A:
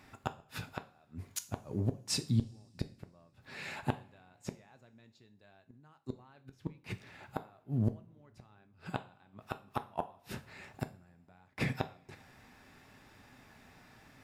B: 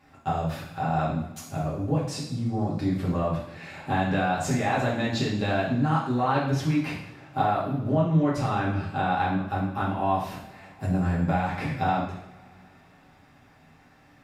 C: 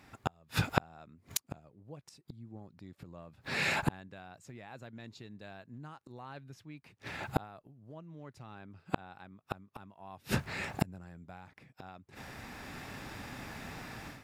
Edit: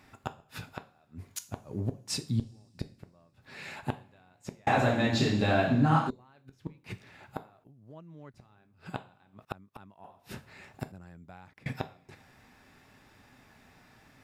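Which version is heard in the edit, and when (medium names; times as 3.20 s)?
A
4.67–6.10 s: from B
7.64–8.34 s: from C
9.45–10.04 s: from C
10.92–11.66 s: from C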